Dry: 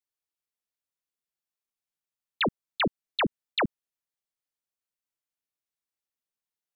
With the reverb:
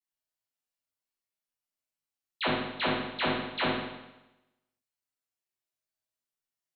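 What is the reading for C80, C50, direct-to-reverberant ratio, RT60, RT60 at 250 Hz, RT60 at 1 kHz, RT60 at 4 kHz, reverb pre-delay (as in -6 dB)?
3.0 dB, -0.5 dB, -10.0 dB, 1.0 s, 0.95 s, 1.0 s, 0.95 s, 8 ms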